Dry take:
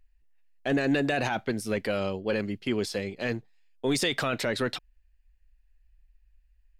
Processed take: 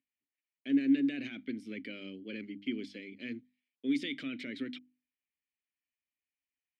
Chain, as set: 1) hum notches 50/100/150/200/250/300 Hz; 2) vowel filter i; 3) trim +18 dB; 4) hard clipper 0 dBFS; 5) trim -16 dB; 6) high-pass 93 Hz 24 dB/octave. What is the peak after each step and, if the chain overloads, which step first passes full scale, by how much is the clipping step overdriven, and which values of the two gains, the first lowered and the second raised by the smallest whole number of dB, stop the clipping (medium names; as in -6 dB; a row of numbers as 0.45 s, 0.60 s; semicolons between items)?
-16.0 dBFS, -20.0 dBFS, -2.0 dBFS, -2.0 dBFS, -18.0 dBFS, -18.0 dBFS; nothing clips